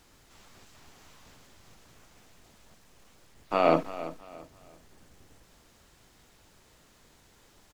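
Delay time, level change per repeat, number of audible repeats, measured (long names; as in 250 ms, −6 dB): 337 ms, −10.0 dB, 3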